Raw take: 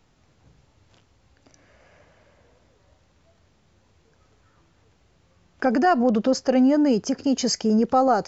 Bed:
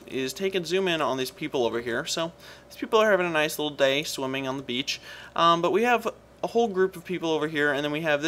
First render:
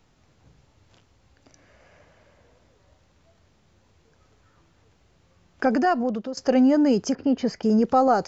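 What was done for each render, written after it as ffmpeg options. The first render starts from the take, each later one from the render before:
-filter_complex "[0:a]asettb=1/sr,asplit=3[s0][s1][s2];[s0]atrim=end=7.154[s3];[s1]atrim=start=7.15:end=7.63,asetpts=PTS-STARTPTS,afade=t=in:d=0.004:c=qsin,afade=t=out:st=0.476:d=0.004:c=qsin,lowpass=2200[s4];[s2]atrim=start=7.626[s5];[s3][s4]acrossfade=d=0.004:c1=hsin:c2=qsin[s6];[s6][s5]acrossfade=d=0.004:c1=qsin:c2=hsin,asplit=2[s7][s8];[s7]atrim=end=6.37,asetpts=PTS-STARTPTS,afade=t=out:st=5.67:d=0.7:silence=0.16788[s9];[s8]atrim=start=6.37,asetpts=PTS-STARTPTS,afade=t=in:d=0.004:c=hsin:silence=0.16788[s10];[s9][s10]concat=n=2:v=0:a=1"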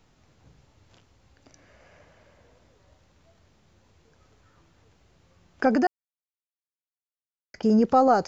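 -filter_complex "[0:a]asplit=3[s0][s1][s2];[s0]atrim=end=5.87,asetpts=PTS-STARTPTS,afade=t=out:st=5.866:d=0.004:c=hsin[s3];[s1]atrim=start=5.87:end=7.54,asetpts=PTS-STARTPTS,volume=0[s4];[s2]atrim=start=7.54,asetpts=PTS-STARTPTS,afade=t=in:d=0.004:c=hsin[s5];[s3][s4][s5]concat=n=3:v=0:a=1"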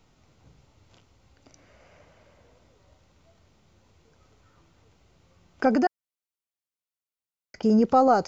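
-af "bandreject=f=1700:w=10"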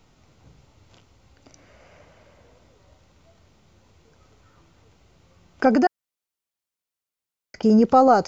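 -af "volume=1.58"

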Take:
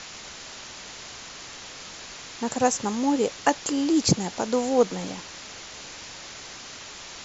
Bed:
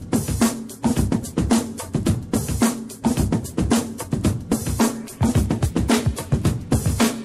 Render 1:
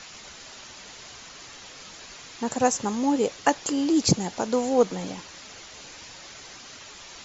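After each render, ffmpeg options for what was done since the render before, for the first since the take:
-af "afftdn=nr=6:nf=-42"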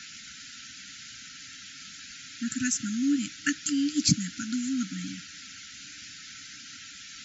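-af "afftfilt=real='re*(1-between(b*sr/4096,310,1300))':imag='im*(1-between(b*sr/4096,310,1300))':win_size=4096:overlap=0.75,highpass=f=130:p=1"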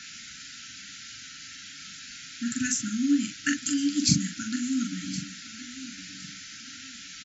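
-filter_complex "[0:a]asplit=2[s0][s1];[s1]adelay=42,volume=0.562[s2];[s0][s2]amix=inputs=2:normalize=0,aecho=1:1:1065|2130|3195:0.178|0.0516|0.015"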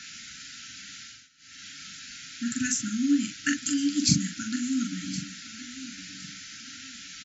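-filter_complex "[0:a]asplit=3[s0][s1][s2];[s0]atrim=end=1.29,asetpts=PTS-STARTPTS,afade=t=out:st=1.01:d=0.28:silence=0.112202[s3];[s1]atrim=start=1.29:end=1.37,asetpts=PTS-STARTPTS,volume=0.112[s4];[s2]atrim=start=1.37,asetpts=PTS-STARTPTS,afade=t=in:d=0.28:silence=0.112202[s5];[s3][s4][s5]concat=n=3:v=0:a=1"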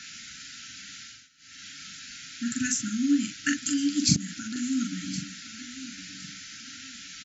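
-filter_complex "[0:a]asettb=1/sr,asplit=3[s0][s1][s2];[s0]atrim=end=4.164[s3];[s1]atrim=start=4.16:end=4.56,asetpts=PTS-STARTPTS,afade=t=in:d=0.004:c=qsin,afade=t=out:st=0.396:d=0.004:c=qsin,acompressor=threshold=0.0282:ratio=6:attack=3.2:release=140:knee=1:detection=peak[s4];[s2]atrim=start=4.556[s5];[s3][s4]acrossfade=d=0.004:c1=hsin:c2=qsin[s6];[s6][s5]acrossfade=d=0.004:c1=qsin:c2=hsin"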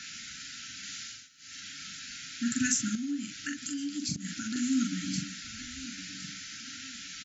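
-filter_complex "[0:a]asettb=1/sr,asplit=3[s0][s1][s2];[s0]atrim=end=0.834[s3];[s1]atrim=start=0.83:end=1.6,asetpts=PTS-STARTPTS,afade=t=in:d=0.004:c=qsin,afade=t=out:st=0.766:d=0.004:c=qsin,highshelf=f=4400:g=5[s4];[s2]atrim=start=1.596[s5];[s3][s4]acrossfade=d=0.004:c1=hsin:c2=qsin[s6];[s6][s5]acrossfade=d=0.004:c1=qsin:c2=hsin,asettb=1/sr,asplit=3[s7][s8][s9];[s7]atrim=end=2.954[s10];[s8]atrim=start=2.95:end=4.25,asetpts=PTS-STARTPTS,afade=t=in:d=0.004:c=qsin,afade=t=out:st=1.296:d=0.004:c=qsin,acompressor=threshold=0.0112:ratio=2:attack=3.2:release=140:knee=1:detection=peak[s11];[s9]atrim=start=4.246[s12];[s10][s11]acrossfade=d=0.004:c1=hsin:c2=qsin[s13];[s13][s12]acrossfade=d=0.004:c1=qsin:c2=hsin,asplit=3[s14][s15][s16];[s14]afade=t=out:st=5.42:d=0.02[s17];[s15]asubboost=boost=7.5:cutoff=93,afade=t=in:st=5.42:d=0.02,afade=t=out:st=5.84:d=0.02[s18];[s16]afade=t=in:st=5.84:d=0.02[s19];[s17][s18][s19]amix=inputs=3:normalize=0"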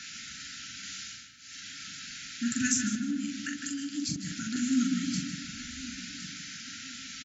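-filter_complex "[0:a]asplit=2[s0][s1];[s1]adelay=155,lowpass=f=2500:p=1,volume=0.562,asplit=2[s2][s3];[s3]adelay=155,lowpass=f=2500:p=1,volume=0.46,asplit=2[s4][s5];[s5]adelay=155,lowpass=f=2500:p=1,volume=0.46,asplit=2[s6][s7];[s7]adelay=155,lowpass=f=2500:p=1,volume=0.46,asplit=2[s8][s9];[s9]adelay=155,lowpass=f=2500:p=1,volume=0.46,asplit=2[s10][s11];[s11]adelay=155,lowpass=f=2500:p=1,volume=0.46[s12];[s0][s2][s4][s6][s8][s10][s12]amix=inputs=7:normalize=0"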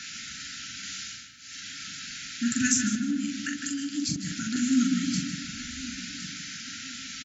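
-af "volume=1.5"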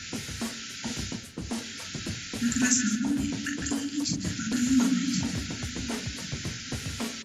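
-filter_complex "[1:a]volume=0.158[s0];[0:a][s0]amix=inputs=2:normalize=0"

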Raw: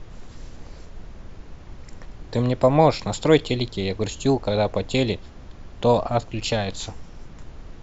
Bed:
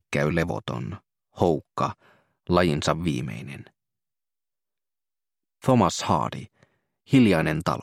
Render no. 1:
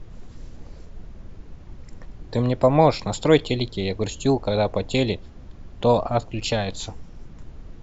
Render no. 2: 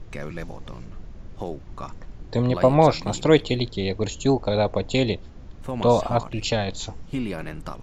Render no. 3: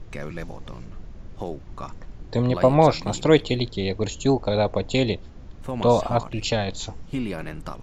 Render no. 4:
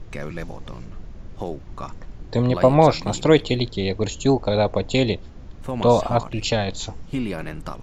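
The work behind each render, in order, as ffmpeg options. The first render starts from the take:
-af "afftdn=nr=6:nf=-43"
-filter_complex "[1:a]volume=0.282[s0];[0:a][s0]amix=inputs=2:normalize=0"
-af anull
-af "volume=1.26,alimiter=limit=0.794:level=0:latency=1"

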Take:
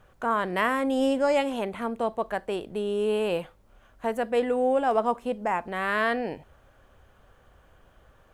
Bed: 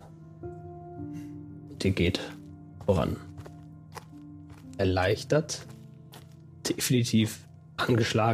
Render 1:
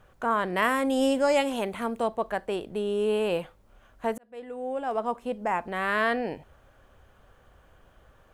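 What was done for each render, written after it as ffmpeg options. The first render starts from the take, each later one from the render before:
-filter_complex "[0:a]asettb=1/sr,asplit=3[s0][s1][s2];[s0]atrim=end=0.624[s3];[s1]atrim=start=0.62:end=2.08,asetpts=PTS-STARTPTS,afade=t=in:d=0.004:c=qsin,afade=t=out:st=1.456:d=0.004:c=qsin,highshelf=f=4000:g=7[s4];[s2]atrim=start=2.076[s5];[s3][s4]acrossfade=d=0.004:c1=hsin:c2=qsin[s6];[s6][s5]acrossfade=d=0.004:c1=qsin:c2=hsin,asplit=2[s7][s8];[s7]atrim=end=4.18,asetpts=PTS-STARTPTS,afade=t=out:st=4.176:d=0.004:c=hsin[s9];[s8]atrim=start=4.18,asetpts=PTS-STARTPTS,afade=t=in:d=1.42[s10];[s9][s10]concat=n=2:v=0:a=1"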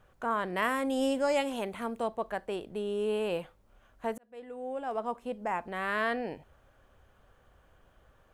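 -af "volume=0.562"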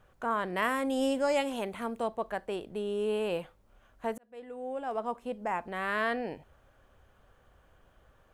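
-af anull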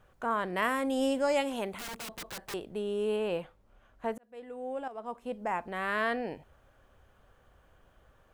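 -filter_complex "[0:a]asettb=1/sr,asplit=3[s0][s1][s2];[s0]atrim=end=1.784[s3];[s1]atrim=start=1.78:end=2.54,asetpts=PTS-STARTPTS,afade=t=in:d=0.004:c=qsin,afade=t=out:st=0.756:d=0.004:c=qsin,aeval=exprs='(mod(56.2*val(0)+1,2)-1)/56.2':c=same[s4];[s2]atrim=start=2.536[s5];[s3][s4]acrossfade=d=0.004:c1=hsin:c2=qsin[s6];[s6][s5]acrossfade=d=0.004:c1=qsin:c2=hsin,asettb=1/sr,asplit=3[s7][s8][s9];[s7]atrim=end=3.164[s10];[s8]atrim=start=3.16:end=4.23,asetpts=PTS-STARTPTS,afade=t=in:d=0.004:c=qsin,afade=t=out:st=1.066:d=0.004:c=qsin,highshelf=f=5300:g=-7[s11];[s9]atrim=start=4.226[s12];[s10][s11]acrossfade=d=0.004:c1=hsin:c2=qsin[s13];[s13][s12]acrossfade=d=0.004:c1=qsin:c2=hsin,asplit=2[s14][s15];[s14]atrim=end=4.88,asetpts=PTS-STARTPTS,afade=t=out:st=4.876:d=0.004:c=hsin:silence=0.223872[s16];[s15]atrim=start=4.88,asetpts=PTS-STARTPTS,afade=t=in:d=0.46:silence=0.223872[s17];[s16][s17]concat=n=2:v=0:a=1"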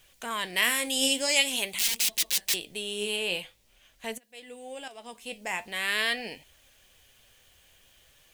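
-af "aexciter=amount=11.5:drive=3.2:freq=2000,flanger=delay=2.6:depth=9:regen=65:speed=0.46:shape=triangular"

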